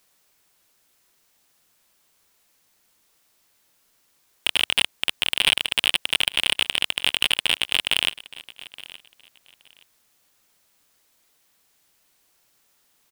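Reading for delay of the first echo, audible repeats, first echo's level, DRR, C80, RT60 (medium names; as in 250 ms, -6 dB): 870 ms, 2, -19.0 dB, no reverb, no reverb, no reverb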